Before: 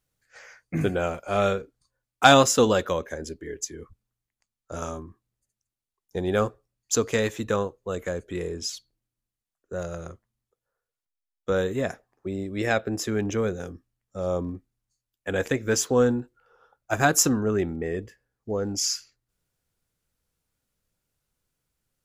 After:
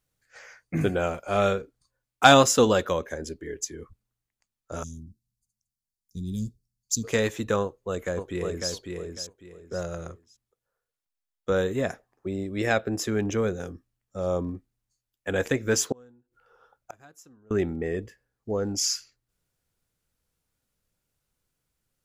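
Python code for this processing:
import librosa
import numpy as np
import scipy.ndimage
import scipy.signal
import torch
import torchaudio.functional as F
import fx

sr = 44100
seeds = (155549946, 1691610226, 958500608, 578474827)

y = fx.ellip_bandstop(x, sr, low_hz=220.0, high_hz=4600.0, order=3, stop_db=80, at=(4.82, 7.03), fade=0.02)
y = fx.echo_throw(y, sr, start_s=7.62, length_s=1.09, ms=550, feedback_pct=25, wet_db=-4.5)
y = fx.gate_flip(y, sr, shuts_db=-23.0, range_db=-32, at=(15.92, 17.51))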